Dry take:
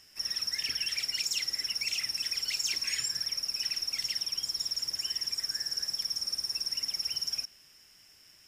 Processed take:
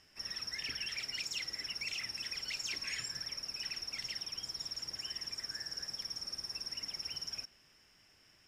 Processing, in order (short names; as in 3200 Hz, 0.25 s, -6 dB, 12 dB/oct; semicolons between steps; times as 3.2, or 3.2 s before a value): LPF 2100 Hz 6 dB/oct